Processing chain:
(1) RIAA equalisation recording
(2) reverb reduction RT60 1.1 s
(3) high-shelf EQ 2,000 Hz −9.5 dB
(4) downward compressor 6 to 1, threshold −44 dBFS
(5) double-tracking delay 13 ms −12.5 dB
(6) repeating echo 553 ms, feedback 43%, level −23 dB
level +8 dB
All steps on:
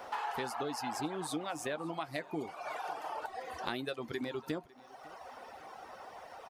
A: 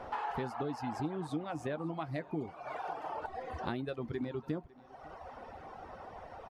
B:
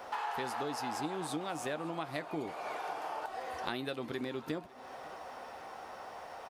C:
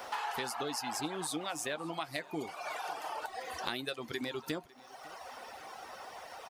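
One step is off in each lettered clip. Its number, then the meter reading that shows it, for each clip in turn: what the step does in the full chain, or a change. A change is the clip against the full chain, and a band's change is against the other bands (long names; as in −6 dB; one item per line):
1, 4 kHz band −8.5 dB
2, change in momentary loudness spread −3 LU
3, 8 kHz band +6.5 dB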